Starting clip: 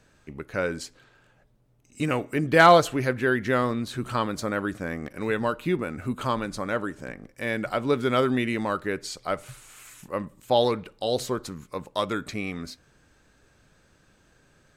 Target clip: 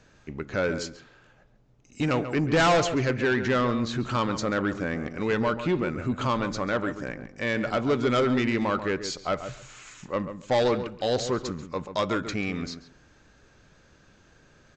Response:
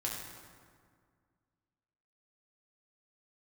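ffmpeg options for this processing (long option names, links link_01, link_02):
-filter_complex "[0:a]aresample=16000,asoftclip=type=tanh:threshold=-21dB,aresample=44100,asplit=2[link_01][link_02];[link_02]adelay=138,lowpass=frequency=1900:poles=1,volume=-9.5dB,asplit=2[link_03][link_04];[link_04]adelay=138,lowpass=frequency=1900:poles=1,volume=0.17[link_05];[link_01][link_03][link_05]amix=inputs=3:normalize=0,volume=3dB"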